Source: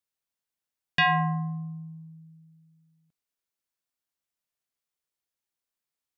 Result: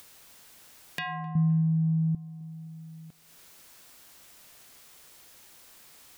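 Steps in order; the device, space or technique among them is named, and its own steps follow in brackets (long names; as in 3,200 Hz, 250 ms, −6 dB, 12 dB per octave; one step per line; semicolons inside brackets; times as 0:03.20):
upward and downward compression (upward compression, threshold −30 dBFS; downward compressor 3 to 1, threshold −41 dBFS, peak gain reduction 15.5 dB)
0:01.35–0:02.15: low shelf with overshoot 280 Hz +11.5 dB, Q 1.5
feedback echo with a band-pass in the loop 259 ms, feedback 65%, band-pass 560 Hz, level −16.5 dB
level +2.5 dB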